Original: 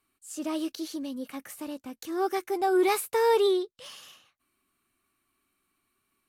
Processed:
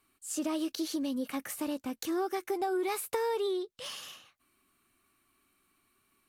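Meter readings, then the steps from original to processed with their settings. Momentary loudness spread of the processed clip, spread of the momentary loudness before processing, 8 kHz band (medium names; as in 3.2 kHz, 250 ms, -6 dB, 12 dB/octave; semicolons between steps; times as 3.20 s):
9 LU, 16 LU, 0.0 dB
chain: compression 10:1, threshold -33 dBFS, peak gain reduction 14 dB; trim +4 dB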